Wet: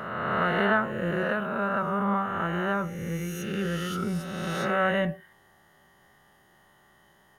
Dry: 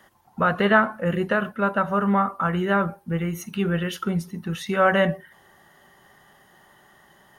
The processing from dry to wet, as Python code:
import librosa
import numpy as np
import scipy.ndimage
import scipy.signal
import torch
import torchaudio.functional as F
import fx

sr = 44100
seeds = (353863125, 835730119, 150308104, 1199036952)

y = fx.spec_swells(x, sr, rise_s=1.85)
y = fx.low_shelf(y, sr, hz=120.0, db=5.5)
y = F.gain(torch.from_numpy(y), -9.0).numpy()